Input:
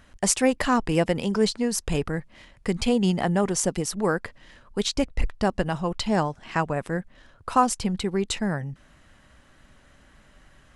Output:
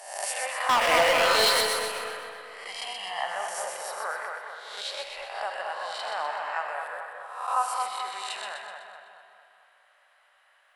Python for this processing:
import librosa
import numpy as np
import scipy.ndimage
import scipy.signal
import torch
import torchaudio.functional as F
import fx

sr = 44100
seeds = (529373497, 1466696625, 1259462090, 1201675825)

y = fx.spec_swells(x, sr, rise_s=0.82)
y = scipy.signal.sosfilt(scipy.signal.cheby2(4, 40, 320.0, 'highpass', fs=sr, output='sos'), y)
y = fx.peak_eq(y, sr, hz=6400.0, db=-12.5, octaves=0.7)
y = fx.leveller(y, sr, passes=5, at=(0.69, 1.61))
y = fx.comb(y, sr, ms=1.0, depth=0.78, at=(2.67, 3.24))
y = fx.transient(y, sr, attack_db=-5, sustain_db=9, at=(5.95, 6.54))
y = fx.echo_split(y, sr, split_hz=1800.0, low_ms=218, high_ms=126, feedback_pct=52, wet_db=-4.5)
y = fx.rev_spring(y, sr, rt60_s=2.2, pass_ms=(39, 57), chirp_ms=70, drr_db=7.0)
y = F.gain(torch.from_numpy(y), -7.0).numpy()